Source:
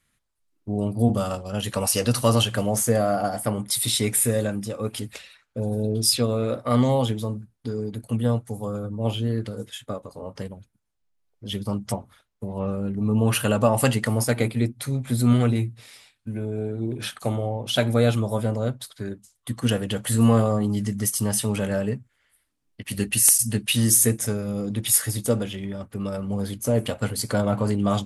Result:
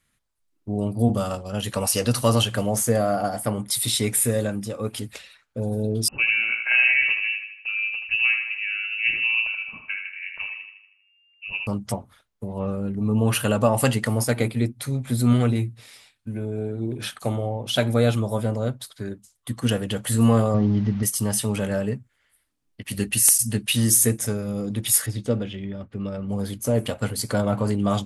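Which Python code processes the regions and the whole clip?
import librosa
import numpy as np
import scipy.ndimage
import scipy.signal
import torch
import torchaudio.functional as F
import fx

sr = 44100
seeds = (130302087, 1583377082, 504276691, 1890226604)

y = fx.chain(x, sr, fx.echo_bbd(ms=79, stages=1024, feedback_pct=52, wet_db=-5.5),
    fx.freq_invert(carrier_hz=2800), at=(6.08, 11.67))
y = fx.chain(y, sr, fx.delta_mod(bps=32000, step_db=-36.0),
    fx.lowpass(hz=2400.0, slope=6),
    fx.tilt_eq(slope=-1.5), at=(20.54, 21.03))
y = fx.chain(y, sr, fx.lowpass(hz=3600.0, slope=12),
    fx.peak_eq(hz=1000.0, db=-5.0, octaves=1.6), at=(25.06, 26.29))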